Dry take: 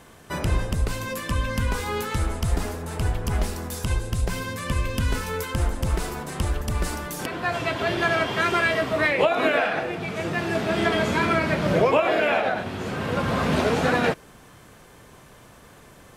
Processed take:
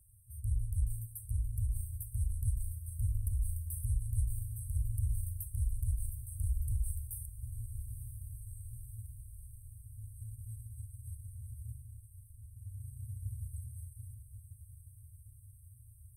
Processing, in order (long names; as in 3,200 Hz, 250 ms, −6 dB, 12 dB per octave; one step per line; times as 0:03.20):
harmonic generator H 7 −29 dB, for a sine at −6.5 dBFS
brickwall limiter −18.5 dBFS, peak gain reduction 10.5 dB
brick-wall band-stop 120–8,100 Hz
on a send: feedback delay with all-pass diffusion 986 ms, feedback 66%, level −11 dB
on the sum: level −3.5 dB